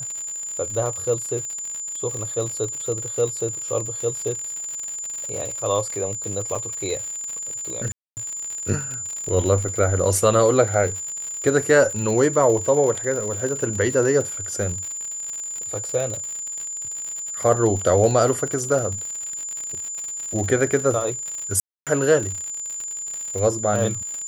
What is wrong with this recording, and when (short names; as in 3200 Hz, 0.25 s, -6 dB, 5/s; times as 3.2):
crackle 93/s -27 dBFS
tone 7100 Hz -28 dBFS
6.55 gap 5 ms
7.92–8.17 gap 0.249 s
21.6–21.87 gap 0.267 s